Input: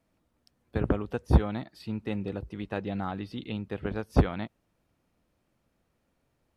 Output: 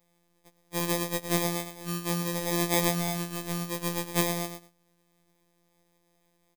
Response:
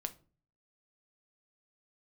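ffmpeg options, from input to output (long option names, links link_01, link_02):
-filter_complex "[0:a]equalizer=frequency=2600:width_type=o:width=0.7:gain=11.5,acrossover=split=190|2900[link_01][link_02][link_03];[link_01]acompressor=threshold=-37dB:ratio=6[link_04];[link_04][link_02][link_03]amix=inputs=3:normalize=0,aecho=1:1:111|222:0.316|0.0506,asplit=2[link_05][link_06];[link_06]asoftclip=type=tanh:threshold=-25.5dB,volume=-0.5dB[link_07];[link_05][link_07]amix=inputs=2:normalize=0,asettb=1/sr,asplit=3[link_08][link_09][link_10];[link_08]atrim=end=2.424[link_11];[link_09]atrim=start=2.42:end=2.9,asetpts=PTS-STARTPTS,afade=type=in:duration=0.004:curve=qsin,afade=type=out:start_time=0.476:duration=0.004:curve=qsin,asplit=2[link_12][link_13];[link_13]highpass=frequency=720:poles=1,volume=24dB,asoftclip=type=tanh:threshold=-10.5dB[link_14];[link_12][link_14]amix=inputs=2:normalize=0,lowpass=frequency=1600:poles=1,volume=-6dB[link_15];[link_10]atrim=start=2.896[link_16];[link_11][link_15]acrossfade=duration=0.004:curve1=hsin:curve2=qsin[link_17];[link_17][link_16]acrossfade=duration=0.004:curve1=qsin:curve2=hsin,acrusher=samples=31:mix=1:aa=0.000001,afftfilt=real='hypot(re,im)*cos(PI*b)':imag='0':win_size=1024:overlap=0.75,crystalizer=i=2:c=0,afftfilt=real='re*2*eq(mod(b,4),0)':imag='im*2*eq(mod(b,4),0)':win_size=2048:overlap=0.75,volume=-4dB"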